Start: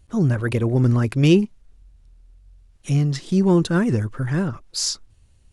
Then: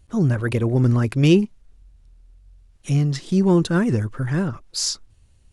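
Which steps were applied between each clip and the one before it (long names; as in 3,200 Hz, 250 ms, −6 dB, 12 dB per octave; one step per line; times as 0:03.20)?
no processing that can be heard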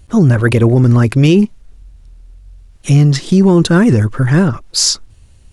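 boost into a limiter +12.5 dB
level −1 dB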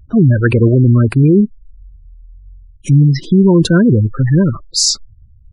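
gate on every frequency bin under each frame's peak −20 dB strong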